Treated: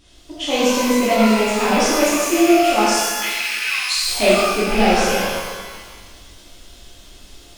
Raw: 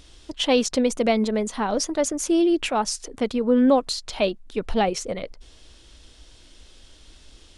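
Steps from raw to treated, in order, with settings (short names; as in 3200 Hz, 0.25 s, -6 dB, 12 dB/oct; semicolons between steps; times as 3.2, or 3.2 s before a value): rattling part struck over -32 dBFS, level -14 dBFS; 2.83–3.96 steep high-pass 1400 Hz 36 dB/oct; vocal rider within 5 dB 0.5 s; shimmer reverb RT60 1.5 s, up +12 st, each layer -8 dB, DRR -10.5 dB; gain -4 dB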